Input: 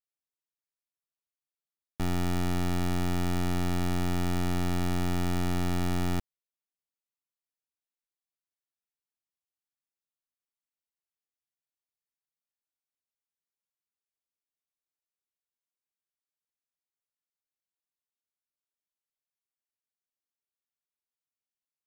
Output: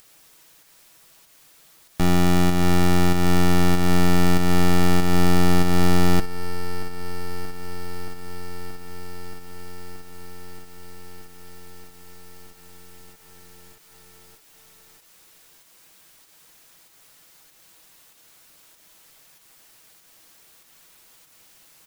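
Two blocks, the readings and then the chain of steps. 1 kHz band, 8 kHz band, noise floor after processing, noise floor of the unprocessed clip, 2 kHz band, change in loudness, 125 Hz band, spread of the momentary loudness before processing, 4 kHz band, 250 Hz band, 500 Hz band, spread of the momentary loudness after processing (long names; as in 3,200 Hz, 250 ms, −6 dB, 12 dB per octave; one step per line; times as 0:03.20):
+11.0 dB, +11.0 dB, −55 dBFS, below −85 dBFS, +11.5 dB, +8.5 dB, +8.5 dB, 2 LU, +11.0 dB, +10.5 dB, +12.0 dB, 20 LU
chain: in parallel at +1 dB: fake sidechain pumping 96 BPM, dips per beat 1, −14 dB, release 261 ms
on the sum: comb filter 6.2 ms, depth 38%
upward compression, threshold −33 dBFS
feedback echo at a low word length 627 ms, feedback 80%, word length 8 bits, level −14 dB
level +4 dB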